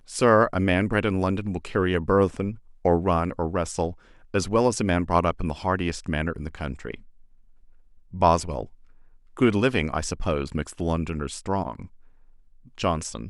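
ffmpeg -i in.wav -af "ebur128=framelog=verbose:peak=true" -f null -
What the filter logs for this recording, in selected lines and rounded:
Integrated loudness:
  I:         -24.8 LUFS
  Threshold: -35.8 LUFS
Loudness range:
  LRA:         5.0 LU
  Threshold: -46.1 LUFS
  LRA low:   -29.3 LUFS
  LRA high:  -24.2 LUFS
True peak:
  Peak:       -4.3 dBFS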